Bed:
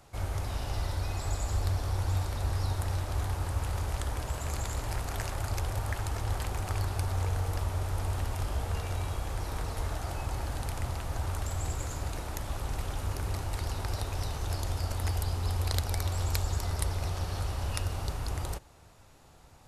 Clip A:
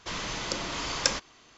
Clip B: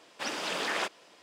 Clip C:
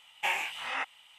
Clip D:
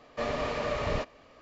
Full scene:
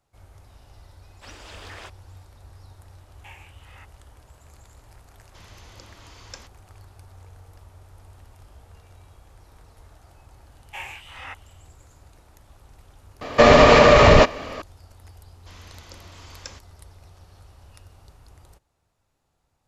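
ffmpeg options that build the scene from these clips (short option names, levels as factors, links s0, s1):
-filter_complex "[3:a]asplit=2[s0][s1];[1:a]asplit=2[s2][s3];[0:a]volume=0.15[s4];[s1]dynaudnorm=f=150:g=3:m=3.16[s5];[4:a]alimiter=level_in=14.1:limit=0.891:release=50:level=0:latency=1[s6];[2:a]atrim=end=1.22,asetpts=PTS-STARTPTS,volume=0.299,afade=t=in:d=0.004:c=hsin,afade=t=out:st=1.216:d=0.004:c=hsin,adelay=1020[s7];[s0]atrim=end=1.18,asetpts=PTS-STARTPTS,volume=0.141,afade=t=in:d=0.004:c=hsin,afade=t=out:st=1.176:d=0.004:c=hsin,adelay=3010[s8];[s2]atrim=end=1.57,asetpts=PTS-STARTPTS,volume=0.15,afade=t=in:d=0.004:c=hsin,afade=t=out:st=1.566:d=0.004:c=hsin,adelay=5280[s9];[s5]atrim=end=1.18,asetpts=PTS-STARTPTS,volume=0.178,afade=t=in:d=0.004:c=hsin,afade=t=out:st=1.176:d=0.004:c=hsin,adelay=463050S[s10];[s6]atrim=end=1.41,asetpts=PTS-STARTPTS,volume=0.891,afade=t=in:d=0.004:c=hsin,afade=t=out:st=1.406:d=0.004:c=hsin,adelay=13210[s11];[s3]atrim=end=1.57,asetpts=PTS-STARTPTS,volume=0.188,afade=t=in:d=0.004:c=hsin,afade=t=out:st=1.566:d=0.004:c=hsin,adelay=679140S[s12];[s4][s7][s8][s9][s10][s11][s12]amix=inputs=7:normalize=0"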